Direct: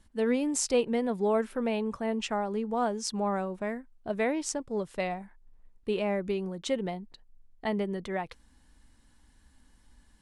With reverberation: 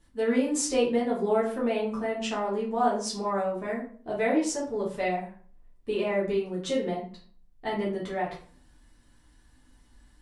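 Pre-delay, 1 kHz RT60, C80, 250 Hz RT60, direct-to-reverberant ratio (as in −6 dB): 6 ms, 0.45 s, 11.0 dB, 0.60 s, −6.5 dB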